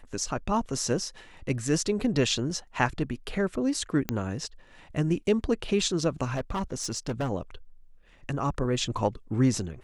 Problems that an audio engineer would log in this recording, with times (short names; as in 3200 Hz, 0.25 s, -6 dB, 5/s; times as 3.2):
4.09 pop -12 dBFS
6.34–7.3 clipped -25.5 dBFS